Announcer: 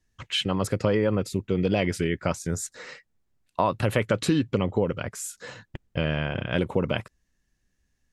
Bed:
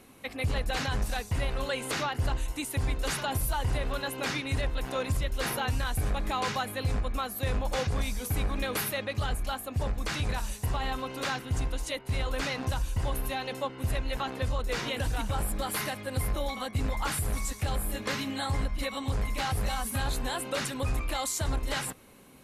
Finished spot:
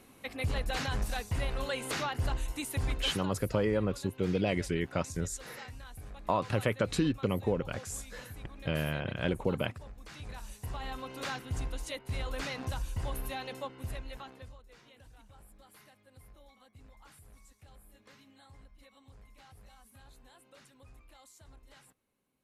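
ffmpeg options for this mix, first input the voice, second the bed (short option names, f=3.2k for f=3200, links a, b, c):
-filter_complex "[0:a]adelay=2700,volume=-6dB[a];[1:a]volume=9dB,afade=t=out:st=2.93:d=0.38:silence=0.188365,afade=t=in:st=10.06:d=1.19:silence=0.251189,afade=t=out:st=13.43:d=1.19:silence=0.0891251[b];[a][b]amix=inputs=2:normalize=0"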